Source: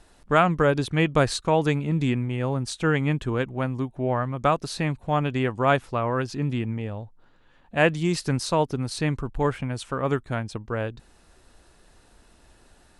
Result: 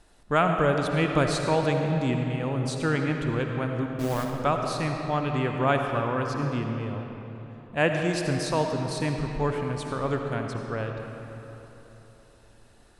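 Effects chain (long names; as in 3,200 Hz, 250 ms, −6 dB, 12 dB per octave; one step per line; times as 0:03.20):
0:03.86–0:04.30: hold until the input has moved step −27 dBFS
comb and all-pass reverb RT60 3.5 s, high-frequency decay 0.65×, pre-delay 35 ms, DRR 3 dB
level −3.5 dB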